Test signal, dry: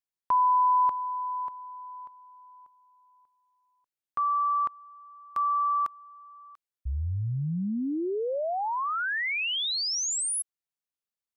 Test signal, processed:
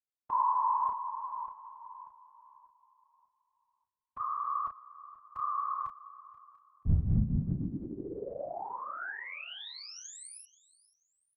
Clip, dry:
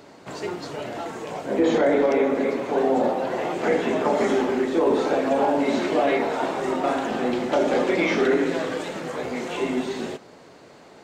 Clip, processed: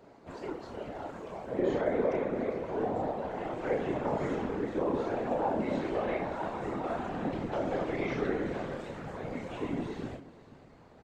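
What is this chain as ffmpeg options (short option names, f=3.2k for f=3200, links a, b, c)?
-filter_complex "[0:a]asubboost=boost=5.5:cutoff=120,asplit=2[a][b];[b]adelay=31,volume=-4.5dB[c];[a][c]amix=inputs=2:normalize=0,afftfilt=real='hypot(re,im)*cos(2*PI*random(0))':imag='hypot(re,im)*sin(2*PI*random(1))':win_size=512:overlap=0.75,highshelf=f=2.4k:g=-12,asplit=2[d][e];[e]aecho=0:1:482|964:0.112|0.0314[f];[d][f]amix=inputs=2:normalize=0,volume=-3dB"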